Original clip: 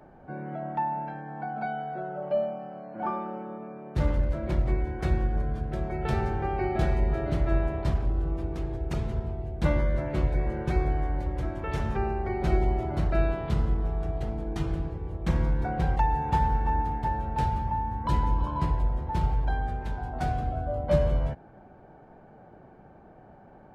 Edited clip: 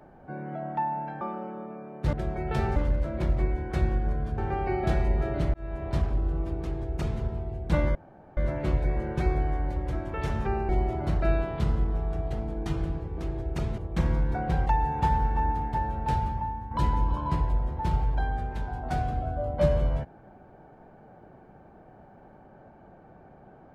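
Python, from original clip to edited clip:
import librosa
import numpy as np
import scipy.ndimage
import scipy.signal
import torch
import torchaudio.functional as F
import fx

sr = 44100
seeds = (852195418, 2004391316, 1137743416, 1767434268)

y = fx.edit(x, sr, fx.cut(start_s=1.21, length_s=1.92),
    fx.move(start_s=5.67, length_s=0.63, to_s=4.05),
    fx.fade_in_span(start_s=7.46, length_s=0.43),
    fx.duplicate(start_s=8.53, length_s=0.6, to_s=15.08),
    fx.insert_room_tone(at_s=9.87, length_s=0.42),
    fx.cut(start_s=12.19, length_s=0.4),
    fx.fade_out_to(start_s=17.54, length_s=0.47, floor_db=-7.5), tone=tone)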